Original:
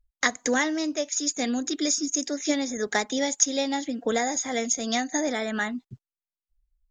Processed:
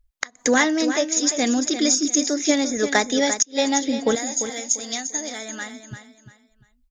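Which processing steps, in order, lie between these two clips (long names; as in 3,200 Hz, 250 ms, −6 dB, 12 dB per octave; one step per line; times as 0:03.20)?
0:04.15–0:05.80: first-order pre-emphasis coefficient 0.8
repeating echo 345 ms, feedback 29%, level −10 dB
gate with flip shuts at −10 dBFS, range −29 dB
level +6 dB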